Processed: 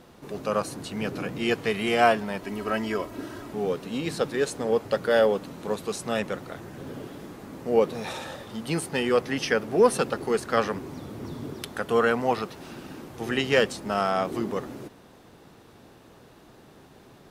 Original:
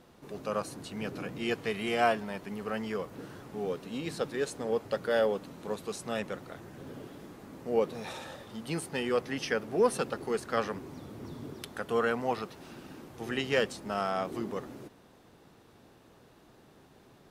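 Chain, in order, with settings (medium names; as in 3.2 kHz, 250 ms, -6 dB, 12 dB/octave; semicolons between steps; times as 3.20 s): 2.43–3.53 s: comb 3.1 ms, depth 70%; trim +6.5 dB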